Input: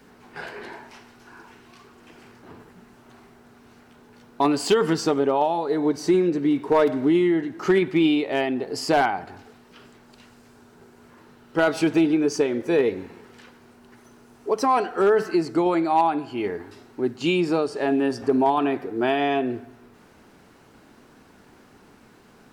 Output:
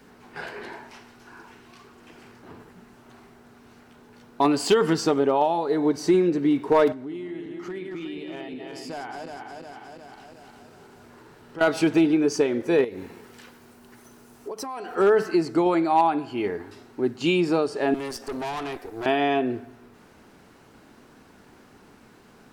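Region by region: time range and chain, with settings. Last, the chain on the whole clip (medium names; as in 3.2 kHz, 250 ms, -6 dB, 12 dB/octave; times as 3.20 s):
6.92–11.61 s: backward echo that repeats 180 ms, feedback 66%, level -4.5 dB + compression 2:1, threshold -45 dBFS
12.84–14.95 s: treble shelf 8.4 kHz +11.5 dB + compression 10:1, threshold -30 dBFS
17.94–19.06 s: high-pass 160 Hz 24 dB/octave + tone controls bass -13 dB, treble +12 dB + valve stage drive 28 dB, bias 0.75
whole clip: none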